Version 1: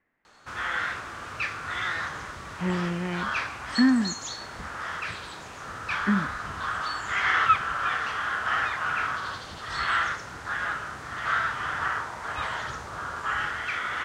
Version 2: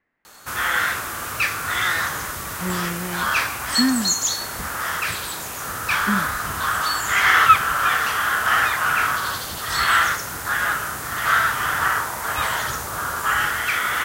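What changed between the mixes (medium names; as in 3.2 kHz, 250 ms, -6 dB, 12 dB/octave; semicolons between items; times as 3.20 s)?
background +7.0 dB; master: remove distance through air 120 m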